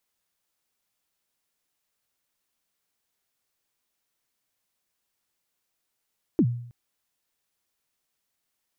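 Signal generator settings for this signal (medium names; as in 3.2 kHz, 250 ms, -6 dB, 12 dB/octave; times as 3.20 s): kick drum length 0.32 s, from 370 Hz, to 120 Hz, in 64 ms, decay 0.63 s, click off, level -14 dB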